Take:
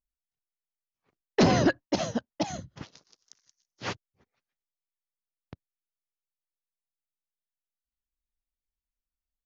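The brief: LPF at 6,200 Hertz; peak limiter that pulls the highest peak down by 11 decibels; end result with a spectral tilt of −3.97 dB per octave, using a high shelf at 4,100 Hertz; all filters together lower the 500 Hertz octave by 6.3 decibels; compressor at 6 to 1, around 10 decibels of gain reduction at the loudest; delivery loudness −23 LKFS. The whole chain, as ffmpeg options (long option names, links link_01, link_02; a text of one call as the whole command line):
ffmpeg -i in.wav -af "lowpass=6200,equalizer=frequency=500:width_type=o:gain=-9,highshelf=frequency=4100:gain=6,acompressor=threshold=-29dB:ratio=6,volume=18.5dB,alimiter=limit=-10.5dB:level=0:latency=1" out.wav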